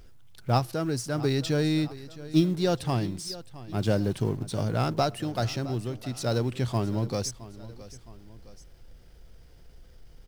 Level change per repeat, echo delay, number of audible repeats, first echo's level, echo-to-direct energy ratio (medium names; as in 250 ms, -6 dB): -6.0 dB, 665 ms, 2, -17.0 dB, -16.0 dB